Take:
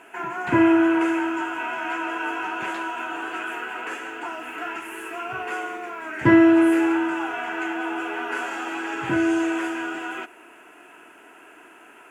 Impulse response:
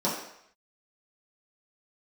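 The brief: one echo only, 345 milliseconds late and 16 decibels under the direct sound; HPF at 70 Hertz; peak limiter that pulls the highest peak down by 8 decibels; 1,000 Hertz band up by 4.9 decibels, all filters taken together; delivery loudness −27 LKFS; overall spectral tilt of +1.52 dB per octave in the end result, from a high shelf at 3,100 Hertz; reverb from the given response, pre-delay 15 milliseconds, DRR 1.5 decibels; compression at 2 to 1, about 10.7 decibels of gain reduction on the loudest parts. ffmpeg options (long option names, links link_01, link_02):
-filter_complex "[0:a]highpass=70,equalizer=frequency=1000:width_type=o:gain=6.5,highshelf=frequency=3100:gain=-5,acompressor=threshold=-30dB:ratio=2,alimiter=limit=-21.5dB:level=0:latency=1,aecho=1:1:345:0.158,asplit=2[link_01][link_02];[1:a]atrim=start_sample=2205,adelay=15[link_03];[link_02][link_03]afir=irnorm=-1:irlink=0,volume=-12.5dB[link_04];[link_01][link_04]amix=inputs=2:normalize=0,volume=0.5dB"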